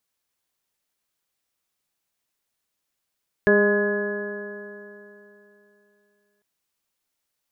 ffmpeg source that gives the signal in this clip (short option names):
-f lavfi -i "aevalsrc='0.0944*pow(10,-3*t/3.07)*sin(2*PI*204.11*t)+0.168*pow(10,-3*t/3.07)*sin(2*PI*408.9*t)+0.0841*pow(10,-3*t/3.07)*sin(2*PI*615.02*t)+0.0119*pow(10,-3*t/3.07)*sin(2*PI*823.15*t)+0.0266*pow(10,-3*t/3.07)*sin(2*PI*1033.93*t)+0.0133*pow(10,-3*t/3.07)*sin(2*PI*1248*t)+0.015*pow(10,-3*t/3.07)*sin(2*PI*1465.98*t)+0.119*pow(10,-3*t/3.07)*sin(2*PI*1688.47*t)':d=2.95:s=44100"